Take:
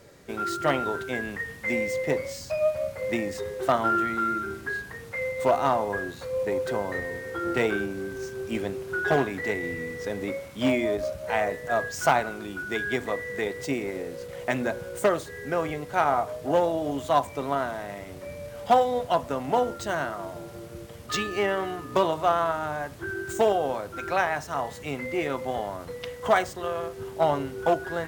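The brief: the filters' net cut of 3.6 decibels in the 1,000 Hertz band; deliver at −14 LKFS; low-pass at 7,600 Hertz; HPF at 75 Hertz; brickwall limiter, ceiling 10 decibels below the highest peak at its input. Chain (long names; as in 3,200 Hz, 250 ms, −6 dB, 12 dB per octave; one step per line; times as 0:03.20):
high-pass filter 75 Hz
low-pass filter 7,600 Hz
parametric band 1,000 Hz −5.5 dB
level +18 dB
brickwall limiter −2 dBFS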